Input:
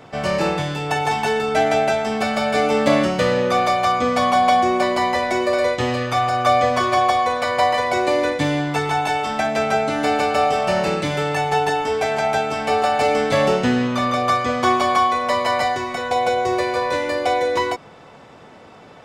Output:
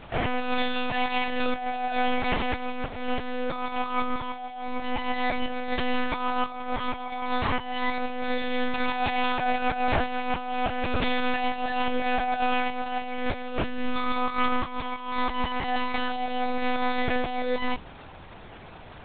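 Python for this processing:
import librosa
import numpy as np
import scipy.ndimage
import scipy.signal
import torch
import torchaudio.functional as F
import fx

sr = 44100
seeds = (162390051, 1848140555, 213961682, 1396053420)

y = fx.high_shelf(x, sr, hz=2100.0, db=5.5)
y = fx.hum_notches(y, sr, base_hz=60, count=8)
y = fx.over_compress(y, sr, threshold_db=-21.0, ratio=-0.5)
y = fx.comb_fb(y, sr, f0_hz=130.0, decay_s=0.29, harmonics='all', damping=0.0, mix_pct=50)
y = fx.lpc_monotone(y, sr, seeds[0], pitch_hz=250.0, order=8)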